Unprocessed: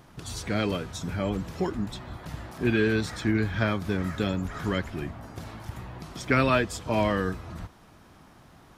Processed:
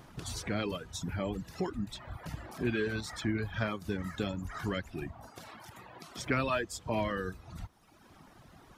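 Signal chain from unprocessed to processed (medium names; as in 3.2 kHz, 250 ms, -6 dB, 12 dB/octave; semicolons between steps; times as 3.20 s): reverb removal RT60 1.2 s; compression 1.5:1, threshold -39 dBFS, peak gain reduction 8 dB; 5.29–6.18 s: high-pass 530 Hz 6 dB/octave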